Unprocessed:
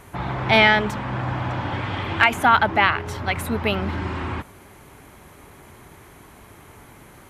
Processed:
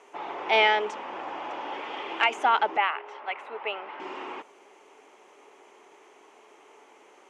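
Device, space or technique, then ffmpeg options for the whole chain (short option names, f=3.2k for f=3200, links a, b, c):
phone speaker on a table: -filter_complex "[0:a]highpass=f=340:w=0.5412,highpass=f=340:w=1.3066,equalizer=f=430:t=q:w=4:g=6,equalizer=f=840:t=q:w=4:g=4,equalizer=f=1.6k:t=q:w=4:g=-5,equalizer=f=2.8k:t=q:w=4:g=5,equalizer=f=4.1k:t=q:w=4:g=-6,equalizer=f=6.3k:t=q:w=4:g=3,lowpass=f=7.4k:w=0.5412,lowpass=f=7.4k:w=1.3066,asettb=1/sr,asplit=3[a][b][c];[a]atrim=end=2.774[d];[b]atrim=start=2.77:end=4,asetpts=PTS-STARTPTS,afade=t=in:d=0.004:c=qsin,afade=t=out:st=1.226:d=0.004:c=qsin,acrossover=split=530 3100:gain=0.178 1 0.0891[e][f][g];[e][f][g]amix=inputs=3:normalize=0[h];[c]atrim=start=3.996[i];[d][h]acrossfade=d=0.004:c1=hsin:c2=qsin[j];[j][i]acrossfade=d=0.004:c1=qsin:c2=hsin,volume=-7dB"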